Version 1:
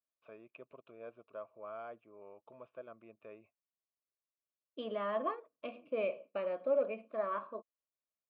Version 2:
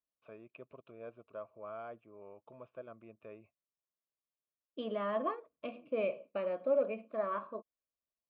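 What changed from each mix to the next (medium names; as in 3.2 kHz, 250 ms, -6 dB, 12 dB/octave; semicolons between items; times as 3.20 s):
master: add bass shelf 170 Hz +10.5 dB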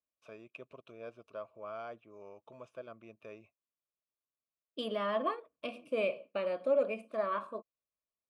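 master: remove distance through air 460 m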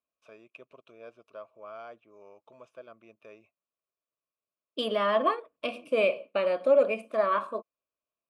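second voice +8.5 dB; master: add bass shelf 170 Hz -10.5 dB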